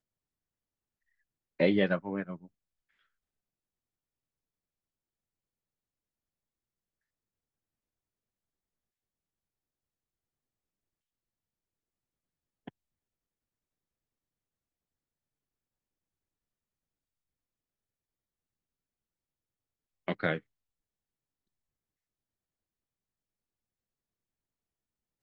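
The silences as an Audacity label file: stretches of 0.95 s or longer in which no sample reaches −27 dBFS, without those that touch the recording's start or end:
2.220000	20.080000	silence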